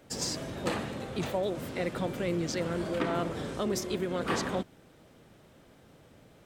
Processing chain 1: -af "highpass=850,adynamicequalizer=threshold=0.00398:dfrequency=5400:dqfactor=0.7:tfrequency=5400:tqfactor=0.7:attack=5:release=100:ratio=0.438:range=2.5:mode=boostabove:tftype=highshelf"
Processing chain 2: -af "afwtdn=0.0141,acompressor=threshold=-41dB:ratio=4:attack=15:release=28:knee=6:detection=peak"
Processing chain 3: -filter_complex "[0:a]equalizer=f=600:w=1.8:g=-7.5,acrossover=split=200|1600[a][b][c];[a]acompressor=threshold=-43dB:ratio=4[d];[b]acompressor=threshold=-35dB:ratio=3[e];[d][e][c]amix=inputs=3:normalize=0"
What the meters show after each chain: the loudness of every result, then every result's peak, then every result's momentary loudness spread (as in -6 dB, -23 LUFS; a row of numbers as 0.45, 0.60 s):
-37.0, -40.0, -36.5 LUFS; -18.0, -25.5, -19.5 dBFS; 8, 2, 4 LU